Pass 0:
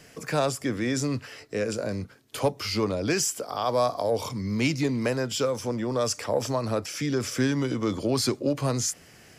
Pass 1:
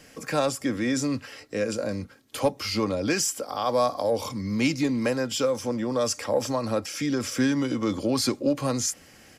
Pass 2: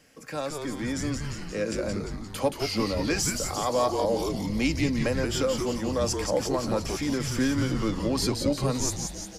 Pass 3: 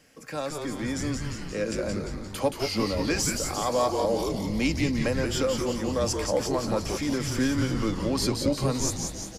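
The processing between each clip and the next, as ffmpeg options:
-af "aecho=1:1:3.7:0.39"
-filter_complex "[0:a]asplit=9[s0][s1][s2][s3][s4][s5][s6][s7][s8];[s1]adelay=175,afreqshift=-150,volume=0.562[s9];[s2]adelay=350,afreqshift=-300,volume=0.331[s10];[s3]adelay=525,afreqshift=-450,volume=0.195[s11];[s4]adelay=700,afreqshift=-600,volume=0.116[s12];[s5]adelay=875,afreqshift=-750,volume=0.0684[s13];[s6]adelay=1050,afreqshift=-900,volume=0.0403[s14];[s7]adelay=1225,afreqshift=-1050,volume=0.0237[s15];[s8]adelay=1400,afreqshift=-1200,volume=0.014[s16];[s0][s9][s10][s11][s12][s13][s14][s15][s16]amix=inputs=9:normalize=0,dynaudnorm=f=200:g=11:m=2,volume=0.398"
-af "aecho=1:1:193|386|579|772|965:0.211|0.108|0.055|0.028|0.0143"

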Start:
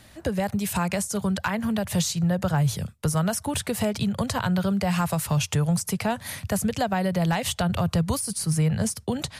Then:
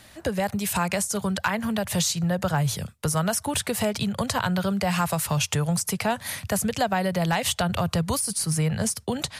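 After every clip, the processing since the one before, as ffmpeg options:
-af "lowshelf=f=380:g=-6,volume=1.41"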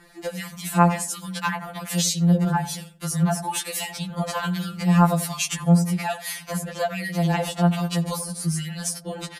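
-filter_complex "[0:a]asplit=2[s0][s1];[s1]adelay=87,lowpass=f=890:p=1,volume=0.335,asplit=2[s2][s3];[s3]adelay=87,lowpass=f=890:p=1,volume=0.39,asplit=2[s4][s5];[s5]adelay=87,lowpass=f=890:p=1,volume=0.39,asplit=2[s6][s7];[s7]adelay=87,lowpass=f=890:p=1,volume=0.39[s8];[s0][s2][s4][s6][s8]amix=inputs=5:normalize=0,acrossover=split=1700[s9][s10];[s9]aeval=exprs='val(0)*(1-0.7/2+0.7/2*cos(2*PI*1.2*n/s))':c=same[s11];[s10]aeval=exprs='val(0)*(1-0.7/2-0.7/2*cos(2*PI*1.2*n/s))':c=same[s12];[s11][s12]amix=inputs=2:normalize=0,afftfilt=real='re*2.83*eq(mod(b,8),0)':imag='im*2.83*eq(mod(b,8),0)':win_size=2048:overlap=0.75,volume=1.68"

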